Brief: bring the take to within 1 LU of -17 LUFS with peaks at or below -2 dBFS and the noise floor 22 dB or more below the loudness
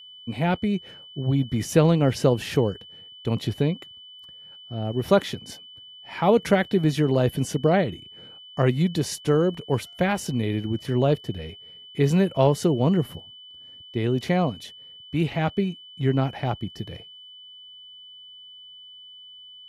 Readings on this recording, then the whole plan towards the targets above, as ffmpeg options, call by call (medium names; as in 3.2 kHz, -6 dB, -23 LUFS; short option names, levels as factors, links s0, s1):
steady tone 3 kHz; tone level -43 dBFS; loudness -24.0 LUFS; peak level -5.5 dBFS; loudness target -17.0 LUFS
-> -af "bandreject=f=3000:w=30"
-af "volume=2.24,alimiter=limit=0.794:level=0:latency=1"